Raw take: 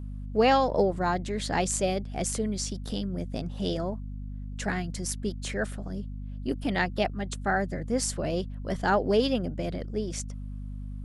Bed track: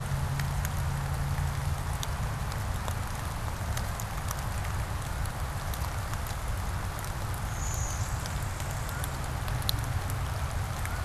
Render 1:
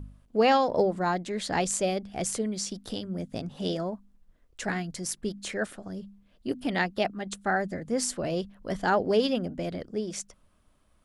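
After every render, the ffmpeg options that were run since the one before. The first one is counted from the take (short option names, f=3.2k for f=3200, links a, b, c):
-af "bandreject=f=50:t=h:w=4,bandreject=f=100:t=h:w=4,bandreject=f=150:t=h:w=4,bandreject=f=200:t=h:w=4,bandreject=f=250:t=h:w=4"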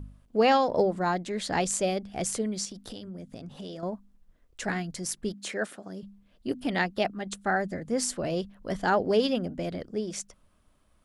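-filter_complex "[0:a]asettb=1/sr,asplit=3[a][b][c];[a]atrim=end=2.654[d];[b]atrim=start=2.65:end=3.83,asetpts=PTS-STARTPTS,afade=t=in:d=0.004:c=qsin,afade=t=out:st=1.176:d=0.004:c=qsin,acompressor=threshold=-37dB:ratio=5:attack=3.2:release=140:knee=1:detection=peak[e];[c]atrim=start=3.826[f];[d][e]acrossfade=d=0.004:c1=hsin:c2=qsin[g];[g][f]acrossfade=d=0.004:c1=qsin:c2=hsin,asettb=1/sr,asplit=3[h][i][j];[h]atrim=end=5.334[k];[i]atrim=start=5.33:end=6.03,asetpts=PTS-STARTPTS,afade=t=in:d=0.004:c=qsin,afade=t=out:st=0.696:d=0.004:c=qsin,highpass=200[l];[j]atrim=start=6.026[m];[k][l]acrossfade=d=0.004:c1=hsin:c2=qsin[n];[n][m]acrossfade=d=0.004:c1=qsin:c2=hsin"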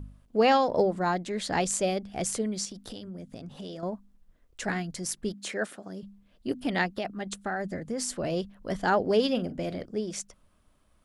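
-filter_complex "[0:a]asettb=1/sr,asplit=3[a][b][c];[a]atrim=end=6.864[d];[b]atrim=start=6.86:end=8.2,asetpts=PTS-STARTPTS,afade=t=in:d=0.004:c=qsin,afade=t=out:st=1.336:d=0.004:c=qsin,acompressor=threshold=-27dB:ratio=6:attack=3.2:release=140:knee=1:detection=peak[e];[c]atrim=start=8.196[f];[d][e]acrossfade=d=0.004:c1=hsin:c2=qsin[g];[g][f]acrossfade=d=0.004:c1=qsin:c2=hsin,asettb=1/sr,asplit=3[h][i][j];[h]atrim=end=9.314[k];[i]atrim=start=9.31:end=9.85,asetpts=PTS-STARTPTS,afade=t=in:d=0.004:c=qsin,afade=t=out:st=0.536:d=0.004:c=qsin,asplit=2[l][m];[m]adelay=43,volume=-13.5dB[n];[l][n]amix=inputs=2:normalize=0,atrim=end_sample=23814[o];[j]atrim=start=9.846[p];[k][o]acrossfade=d=0.004:c1=hsin:c2=qsin[q];[q][p]acrossfade=d=0.004:c1=qsin:c2=hsin"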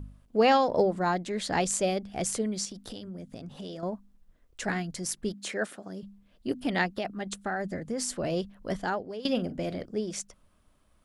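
-filter_complex "[0:a]asplit=2[a][b];[a]atrim=end=9.25,asetpts=PTS-STARTPTS,afade=t=out:st=8.72:d=0.53:c=qua:silence=0.149624[c];[b]atrim=start=9.25,asetpts=PTS-STARTPTS,afade=t=in:d=0.004:c=hsin:silence=0.149624[d];[c][d]concat=n=2:v=0:a=1"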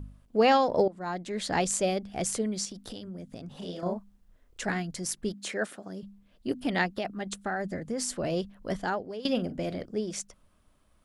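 -filter_complex "[0:a]asettb=1/sr,asplit=3[a][b][c];[a]atrim=end=3.584[d];[b]atrim=start=3.58:end=4.63,asetpts=PTS-STARTPTS,afade=t=in:d=0.004:c=qsin,afade=t=out:st=1.046:d=0.004:c=qsin,asplit=2[e][f];[f]adelay=34,volume=-2dB[g];[e][g]amix=inputs=2:normalize=0,atrim=end_sample=46305[h];[c]atrim=start=4.626[i];[d][h]acrossfade=d=0.004:c1=hsin:c2=qsin[j];[j][i]acrossfade=d=0.004:c1=qsin:c2=hsin,asplit=2[k][l];[k]atrim=end=0.88,asetpts=PTS-STARTPTS,afade=t=out:st=0.876:d=0.004:c=hsin:silence=0.125893[m];[l]atrim=start=0.88,asetpts=PTS-STARTPTS,afade=t=in:d=0.56:silence=0.125893[n];[m][n]concat=n=2:v=0:a=1"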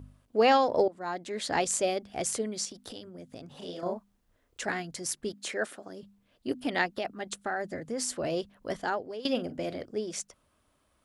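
-af "highpass=f=120:p=1,equalizer=f=190:w=4.7:g=-9.5"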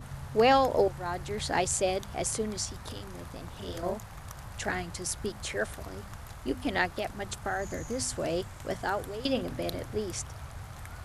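-filter_complex "[1:a]volume=-10.5dB[a];[0:a][a]amix=inputs=2:normalize=0"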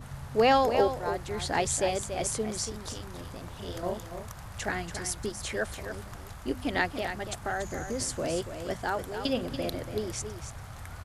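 -af "aecho=1:1:285:0.355"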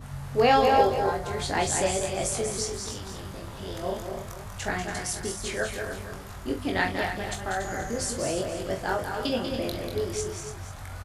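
-filter_complex "[0:a]asplit=2[a][b];[b]adelay=21,volume=-4dB[c];[a][c]amix=inputs=2:normalize=0,asplit=2[d][e];[e]aecho=0:1:44|191|217:0.316|0.447|0.299[f];[d][f]amix=inputs=2:normalize=0"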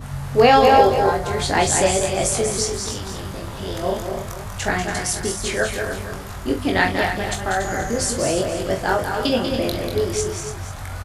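-af "volume=8dB,alimiter=limit=-3dB:level=0:latency=1"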